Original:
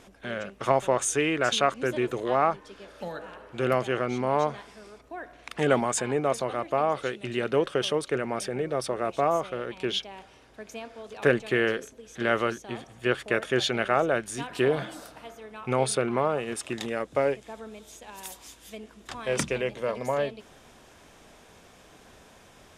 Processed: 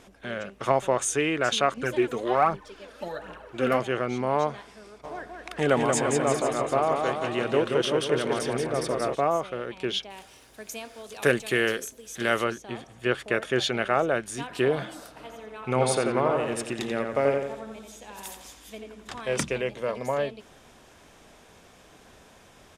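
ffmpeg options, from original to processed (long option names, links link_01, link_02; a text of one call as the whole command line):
ffmpeg -i in.wav -filter_complex "[0:a]asettb=1/sr,asplit=3[link_01][link_02][link_03];[link_01]atrim=end=1.774[link_04];[link_02]atrim=start=1.77:end=3.8,asetpts=PTS-STARTPTS,afade=type=in:duration=0.004:curve=qsin,afade=type=out:start_time=2.026:duration=0.004:curve=qsin,aphaser=in_gain=1:out_gain=1:delay=4.6:decay=0.55:speed=1.3:type=triangular[link_05];[link_03]atrim=start=3.796[link_06];[link_04][link_05]acrossfade=duration=0.004:curve1=hsin:curve2=qsin[link_07];[link_07][link_06]acrossfade=duration=0.004:curve1=qsin:curve2=hsin,asplit=3[link_08][link_09][link_10];[link_08]afade=type=out:start_time=5.03:duration=0.02[link_11];[link_09]aecho=1:1:180|342|487.8|619|737.1:0.631|0.398|0.251|0.158|0.1,afade=type=in:start_time=5.03:duration=0.02,afade=type=out:start_time=9.14:duration=0.02[link_12];[link_10]afade=type=in:start_time=9.14:duration=0.02[link_13];[link_11][link_12][link_13]amix=inputs=3:normalize=0,asettb=1/sr,asplit=3[link_14][link_15][link_16];[link_14]atrim=end=10.104[link_17];[link_15]atrim=start=10.1:end=12.44,asetpts=PTS-STARTPTS,afade=type=in:duration=0.004:curve=qsin,afade=type=out:start_time=2.336:duration=0.004:curve=qsin,aemphasis=mode=production:type=75fm[link_18];[link_16]atrim=start=12.436[link_19];[link_17][link_18]acrossfade=duration=0.004:curve1=hsin:curve2=qsin[link_20];[link_20][link_19]acrossfade=duration=0.004:curve1=qsin:curve2=hsin,asplit=3[link_21][link_22][link_23];[link_21]afade=type=out:start_time=15.17:duration=0.02[link_24];[link_22]asplit=2[link_25][link_26];[link_26]adelay=87,lowpass=frequency=3400:poles=1,volume=-3.5dB,asplit=2[link_27][link_28];[link_28]adelay=87,lowpass=frequency=3400:poles=1,volume=0.49,asplit=2[link_29][link_30];[link_30]adelay=87,lowpass=frequency=3400:poles=1,volume=0.49,asplit=2[link_31][link_32];[link_32]adelay=87,lowpass=frequency=3400:poles=1,volume=0.49,asplit=2[link_33][link_34];[link_34]adelay=87,lowpass=frequency=3400:poles=1,volume=0.49,asplit=2[link_35][link_36];[link_36]adelay=87,lowpass=frequency=3400:poles=1,volume=0.49[link_37];[link_25][link_27][link_29][link_31][link_33][link_35][link_37]amix=inputs=7:normalize=0,afade=type=in:start_time=15.17:duration=0.02,afade=type=out:start_time=19.19:duration=0.02[link_38];[link_23]afade=type=in:start_time=19.19:duration=0.02[link_39];[link_24][link_38][link_39]amix=inputs=3:normalize=0" out.wav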